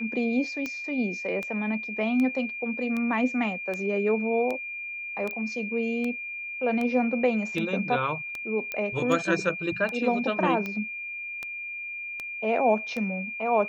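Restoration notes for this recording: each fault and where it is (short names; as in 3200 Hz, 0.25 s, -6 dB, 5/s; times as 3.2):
tick 78 rpm -19 dBFS
tone 2400 Hz -33 dBFS
5.31 pop -22 dBFS
8.72 pop -17 dBFS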